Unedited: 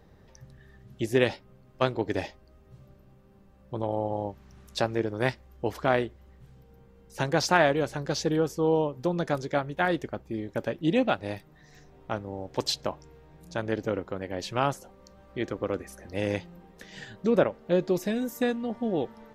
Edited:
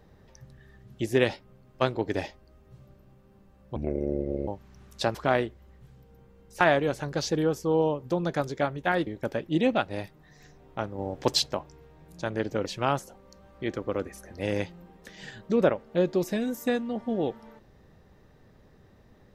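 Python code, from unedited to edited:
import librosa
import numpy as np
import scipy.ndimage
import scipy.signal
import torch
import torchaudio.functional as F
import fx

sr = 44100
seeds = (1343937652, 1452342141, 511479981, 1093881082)

y = fx.edit(x, sr, fx.speed_span(start_s=3.76, length_s=0.48, speed=0.67),
    fx.cut(start_s=4.91, length_s=0.83),
    fx.cut(start_s=7.2, length_s=0.34),
    fx.cut(start_s=10.0, length_s=0.39),
    fx.clip_gain(start_s=12.31, length_s=0.48, db=4.0),
    fx.cut(start_s=13.98, length_s=0.42), tone=tone)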